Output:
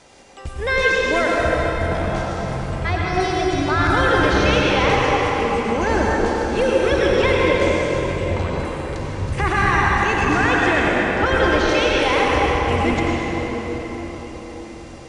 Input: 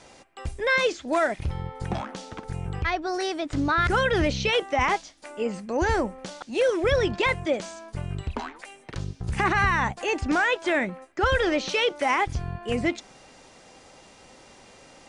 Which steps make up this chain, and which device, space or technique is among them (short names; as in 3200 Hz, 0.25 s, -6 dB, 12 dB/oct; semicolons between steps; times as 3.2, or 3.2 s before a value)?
cathedral (reverb RT60 5.4 s, pre-delay 85 ms, DRR -5 dB); gain +1 dB